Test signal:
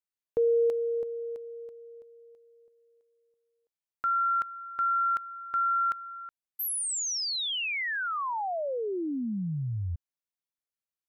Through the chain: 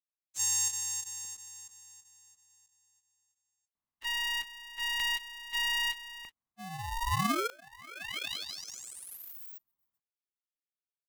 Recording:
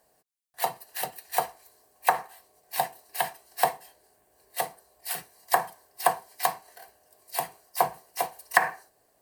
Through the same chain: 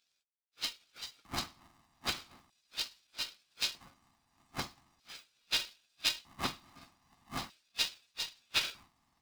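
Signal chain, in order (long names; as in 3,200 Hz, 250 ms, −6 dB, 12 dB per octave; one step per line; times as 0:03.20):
frequency axis turned over on the octave scale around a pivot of 1,800 Hz
auto-filter high-pass square 0.4 Hz 640–2,900 Hz
ring modulator with a square carrier 470 Hz
level −7 dB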